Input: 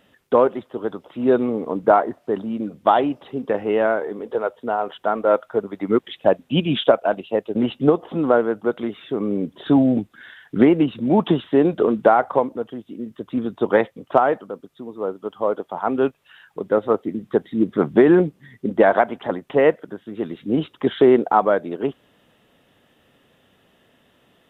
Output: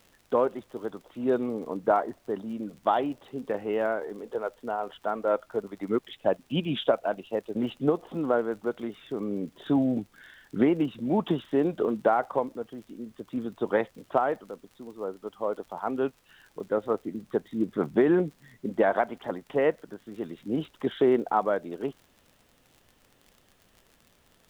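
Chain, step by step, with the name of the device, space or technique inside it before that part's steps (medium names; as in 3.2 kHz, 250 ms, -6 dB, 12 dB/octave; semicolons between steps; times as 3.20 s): vinyl LP (crackle 56 per s -34 dBFS; pink noise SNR 37 dB); trim -8.5 dB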